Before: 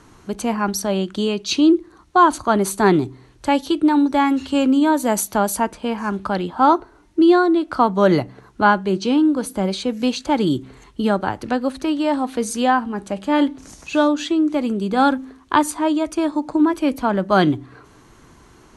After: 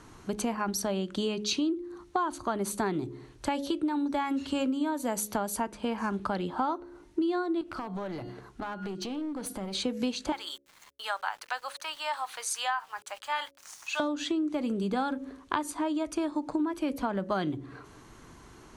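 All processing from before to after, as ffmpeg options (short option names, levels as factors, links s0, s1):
-filter_complex "[0:a]asettb=1/sr,asplit=3[s0][s1][s2];[s0]atrim=end=7.614[s3];[s1]atrim=start=7.61:end=9.75,asetpts=PTS-STARTPTS,afade=t=in:d=0.004:c=qsin,afade=t=out:st=2.136:d=0.004:c=qsin,bandreject=f=357.9:t=h:w=4,bandreject=f=715.8:t=h:w=4,bandreject=f=1073.7:t=h:w=4,bandreject=f=1431.6:t=h:w=4,bandreject=f=1789.5:t=h:w=4,bandreject=f=2147.4:t=h:w=4,bandreject=f=2505.3:t=h:w=4,bandreject=f=2863.2:t=h:w=4,bandreject=f=3221.1:t=h:w=4,bandreject=f=3579:t=h:w=4,bandreject=f=3936.9:t=h:w=4,bandreject=f=4294.8:t=h:w=4,bandreject=f=4652.7:t=h:w=4,bandreject=f=5010.6:t=h:w=4,bandreject=f=5368.5:t=h:w=4,bandreject=f=5726.4:t=h:w=4,bandreject=f=6084.3:t=h:w=4,bandreject=f=6442.2:t=h:w=4,bandreject=f=6800.1:t=h:w=4,bandreject=f=7158:t=h:w=4,bandreject=f=7515.9:t=h:w=4,bandreject=f=7873.8:t=h:w=4,bandreject=f=8231.7:t=h:w=4,bandreject=f=8589.6:t=h:w=4,bandreject=f=8947.5:t=h:w=4,bandreject=f=9305.4:t=h:w=4,bandreject=f=9663.3:t=h:w=4,bandreject=f=10021.2:t=h:w=4,bandreject=f=10379.1:t=h:w=4,bandreject=f=10737:t=h:w=4,bandreject=f=11094.9:t=h:w=4,bandreject=f=11452.8:t=h:w=4,bandreject=f=11810.7:t=h:w=4,bandreject=f=12168.6:t=h:w=4,acompressor=threshold=0.0447:ratio=20:attack=3.2:release=140:knee=1:detection=peak,aeval=exprs='clip(val(0),-1,0.0316)':c=same[s4];[s2]atrim=start=9.746[s5];[s3][s4]acrossfade=d=0.004:c1=hsin:c2=qsin[s6];[s6][s5]acrossfade=d=0.004:c1=qsin:c2=hsin,asettb=1/sr,asplit=3[s7][s8][s9];[s7]atrim=end=10.324[s10];[s8]atrim=start=10.32:end=14,asetpts=PTS-STARTPTS,afade=t=in:d=0.004:c=qsin,afade=t=out:st=3.676:d=0.004:c=qsin,highpass=f=890:w=0.5412,highpass=f=890:w=1.3066,aeval=exprs='val(0)*gte(abs(val(0)),0.00398)':c=same[s11];[s9]atrim=start=13.996[s12];[s10][s11]acrossfade=d=0.004:c1=hsin:c2=qsin[s13];[s13][s12]acrossfade=d=0.004:c1=qsin:c2=hsin,bandreject=f=69.87:t=h:w=4,bandreject=f=139.74:t=h:w=4,bandreject=f=209.61:t=h:w=4,bandreject=f=279.48:t=h:w=4,bandreject=f=349.35:t=h:w=4,bandreject=f=419.22:t=h:w=4,bandreject=f=489.09:t=h:w=4,bandreject=f=558.96:t=h:w=4,acompressor=threshold=0.0631:ratio=6,volume=0.708"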